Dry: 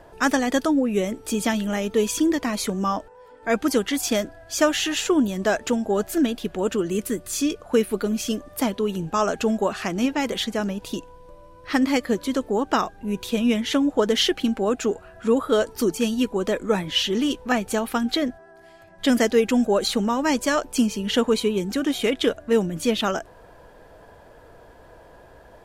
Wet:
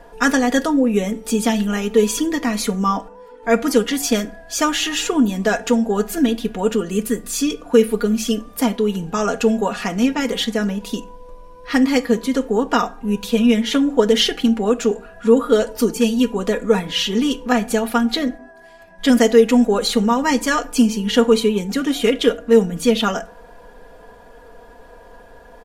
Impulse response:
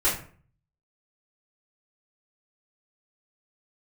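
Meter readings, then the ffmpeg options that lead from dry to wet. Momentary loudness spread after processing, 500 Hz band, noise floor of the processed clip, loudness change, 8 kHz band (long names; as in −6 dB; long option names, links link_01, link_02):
7 LU, +5.0 dB, −44 dBFS, +5.0 dB, +4.0 dB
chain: -filter_complex "[0:a]aecho=1:1:4.2:0.74,asplit=2[link_01][link_02];[1:a]atrim=start_sample=2205[link_03];[link_02][link_03]afir=irnorm=-1:irlink=0,volume=-24.5dB[link_04];[link_01][link_04]amix=inputs=2:normalize=0,volume=1.5dB"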